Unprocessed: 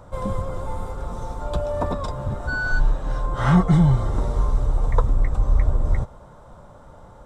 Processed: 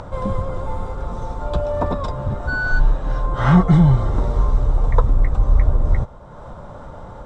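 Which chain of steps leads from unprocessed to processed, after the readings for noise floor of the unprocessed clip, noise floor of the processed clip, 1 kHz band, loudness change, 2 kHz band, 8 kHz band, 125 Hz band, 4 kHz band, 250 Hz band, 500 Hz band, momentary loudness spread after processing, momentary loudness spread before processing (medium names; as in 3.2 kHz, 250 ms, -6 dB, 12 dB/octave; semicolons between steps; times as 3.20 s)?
-46 dBFS, -37 dBFS, +3.0 dB, +3.5 dB, +3.0 dB, no reading, +3.5 dB, +1.5 dB, +3.5 dB, +3.5 dB, 19 LU, 15 LU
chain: upward compressor, threshold -30 dBFS; distance through air 81 m; trim +3.5 dB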